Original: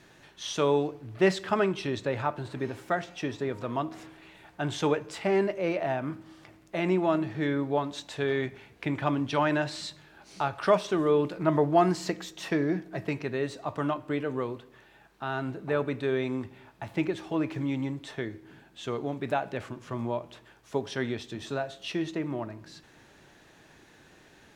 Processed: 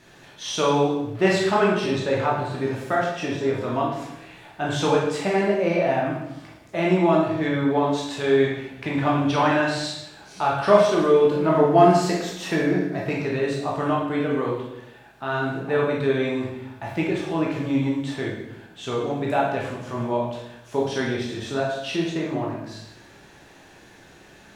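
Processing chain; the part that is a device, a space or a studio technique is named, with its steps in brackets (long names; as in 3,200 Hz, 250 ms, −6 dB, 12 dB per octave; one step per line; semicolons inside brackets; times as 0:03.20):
bathroom (convolution reverb RT60 0.85 s, pre-delay 13 ms, DRR −3.5 dB)
level +2 dB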